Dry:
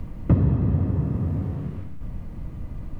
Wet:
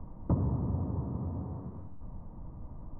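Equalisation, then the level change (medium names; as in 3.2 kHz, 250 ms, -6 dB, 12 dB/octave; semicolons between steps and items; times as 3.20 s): four-pole ladder low-pass 1.1 kHz, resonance 55%; hum notches 50/100/150 Hz; 0.0 dB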